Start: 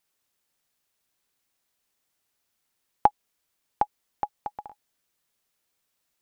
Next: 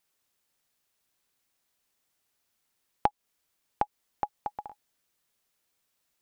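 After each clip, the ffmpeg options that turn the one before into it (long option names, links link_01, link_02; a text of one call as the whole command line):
ffmpeg -i in.wav -af "acompressor=threshold=-26dB:ratio=2" out.wav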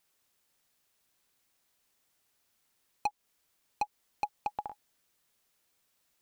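ffmpeg -i in.wav -af "volume=26.5dB,asoftclip=hard,volume=-26.5dB,volume=2.5dB" out.wav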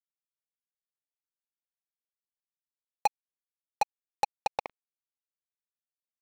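ffmpeg -i in.wav -af "highpass=frequency=520:width_type=q:width=4.8,acrusher=bits=3:mix=0:aa=0.5" out.wav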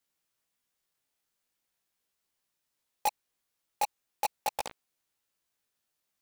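ffmpeg -i in.wav -filter_complex "[0:a]flanger=delay=15.5:depth=3.9:speed=0.41,asplit=2[link_01][link_02];[link_02]aeval=exprs='0.0841*sin(PI/2*7.94*val(0)/0.0841)':channel_layout=same,volume=-6.5dB[link_03];[link_01][link_03]amix=inputs=2:normalize=0" out.wav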